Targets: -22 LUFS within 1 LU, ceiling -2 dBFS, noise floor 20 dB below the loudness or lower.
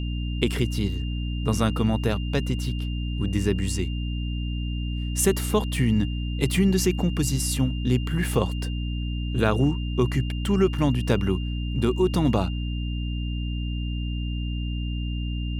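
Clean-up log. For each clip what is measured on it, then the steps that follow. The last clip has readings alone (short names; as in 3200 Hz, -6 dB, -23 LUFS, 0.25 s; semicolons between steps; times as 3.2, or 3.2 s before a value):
hum 60 Hz; harmonics up to 300 Hz; hum level -25 dBFS; steady tone 2800 Hz; tone level -40 dBFS; loudness -25.5 LUFS; peak -6.0 dBFS; loudness target -22.0 LUFS
-> de-hum 60 Hz, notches 5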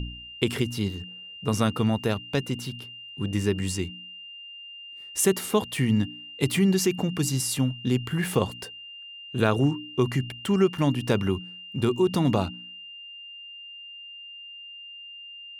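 hum none; steady tone 2800 Hz; tone level -40 dBFS
-> notch 2800 Hz, Q 30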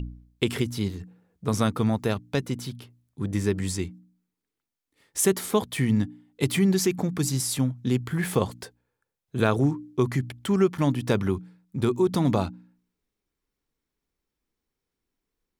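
steady tone none; loudness -26.0 LUFS; peak -7.5 dBFS; loudness target -22.0 LUFS
-> gain +4 dB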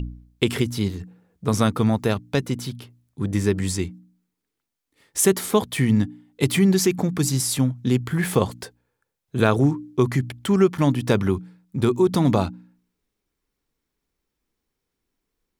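loudness -22.0 LUFS; peak -3.5 dBFS; noise floor -81 dBFS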